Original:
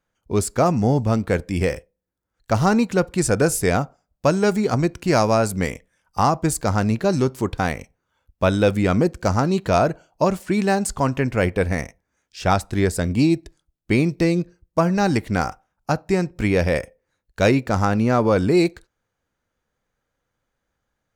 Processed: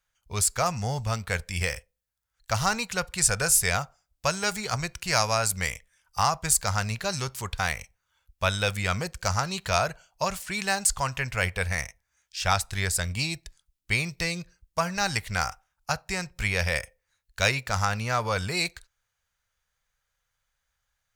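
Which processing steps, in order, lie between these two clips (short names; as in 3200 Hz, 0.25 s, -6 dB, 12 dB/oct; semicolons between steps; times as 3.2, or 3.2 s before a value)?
passive tone stack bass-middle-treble 10-0-10; gain +5 dB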